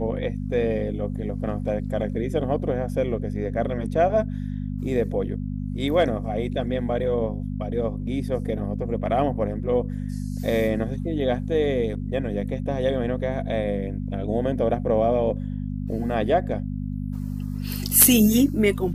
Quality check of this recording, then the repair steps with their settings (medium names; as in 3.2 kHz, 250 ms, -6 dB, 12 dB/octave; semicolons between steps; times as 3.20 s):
hum 50 Hz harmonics 5 -29 dBFS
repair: de-hum 50 Hz, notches 5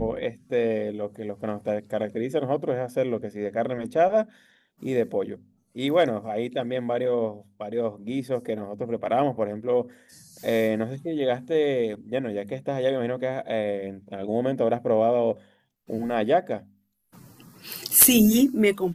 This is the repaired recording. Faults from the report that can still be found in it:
nothing left